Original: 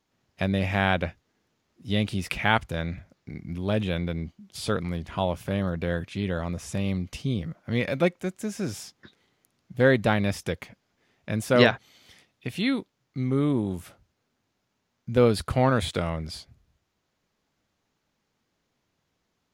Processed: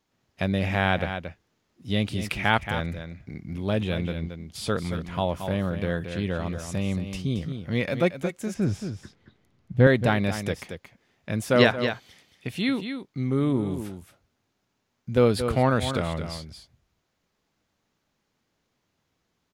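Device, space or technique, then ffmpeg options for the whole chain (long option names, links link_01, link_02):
ducked delay: -filter_complex "[0:a]asettb=1/sr,asplit=3[link_01][link_02][link_03];[link_01]atrim=end=8.544[link_04];[link_02]atrim=start=8.54:end=9.87,asetpts=PTS-STARTPTS,afade=type=in:duration=0.004:curve=qsin,afade=type=out:start_time=1.326:duration=0.004:curve=qsin,aemphasis=mode=reproduction:type=bsi[link_05];[link_03]atrim=start=9.866[link_06];[link_04][link_05]acrossfade=duration=0.004:curve1=hsin:curve2=qsin[link_07];[link_07][link_06]acrossfade=duration=0.004:curve1=qsin:curve2=hsin,asplit=3[link_08][link_09][link_10];[link_09]adelay=226,volume=-8dB[link_11];[link_10]apad=whole_len=871421[link_12];[link_11][link_12]sidechaincompress=threshold=-26dB:ratio=8:attack=24:release=164[link_13];[link_08][link_13]amix=inputs=2:normalize=0"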